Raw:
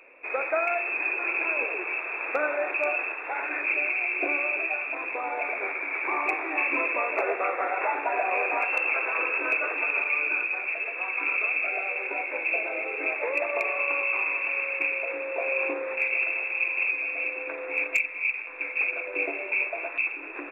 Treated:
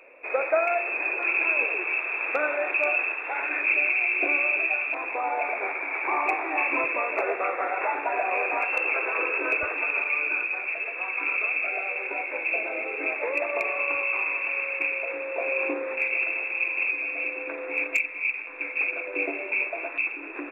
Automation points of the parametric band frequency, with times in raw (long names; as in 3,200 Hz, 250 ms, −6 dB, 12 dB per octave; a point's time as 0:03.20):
parametric band +5.5 dB 0.76 octaves
570 Hz
from 0:01.23 3,000 Hz
from 0:04.94 800 Hz
from 0:06.84 140 Hz
from 0:08.77 410 Hz
from 0:09.63 77 Hz
from 0:12.56 230 Hz
from 0:13.95 67 Hz
from 0:15.38 280 Hz